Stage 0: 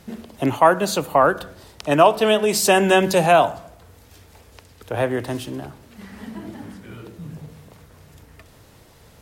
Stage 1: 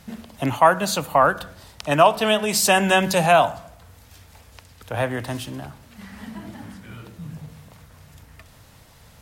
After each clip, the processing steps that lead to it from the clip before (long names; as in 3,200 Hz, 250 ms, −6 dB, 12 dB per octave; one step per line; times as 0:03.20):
parametric band 380 Hz −9.5 dB 0.92 octaves
level +1 dB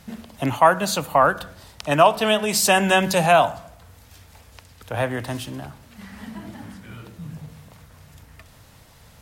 no processing that can be heard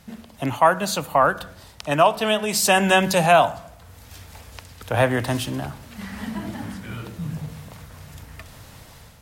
automatic gain control gain up to 8.5 dB
level −2.5 dB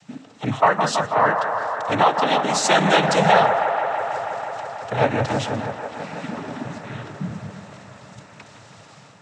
cochlear-implant simulation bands 12
delay with a band-pass on its return 163 ms, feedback 82%, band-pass 930 Hz, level −6 dB